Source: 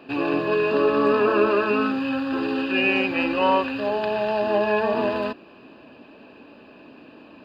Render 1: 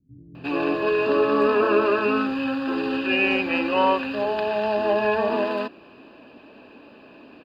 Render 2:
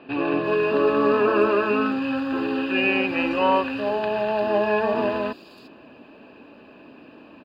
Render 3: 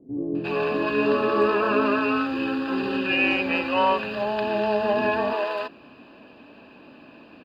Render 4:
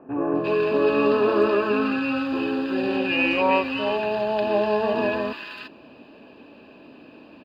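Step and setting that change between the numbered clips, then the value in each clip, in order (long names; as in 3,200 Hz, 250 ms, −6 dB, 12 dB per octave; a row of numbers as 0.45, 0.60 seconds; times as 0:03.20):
multiband delay without the direct sound, split: 150, 4,500, 410, 1,400 Hertz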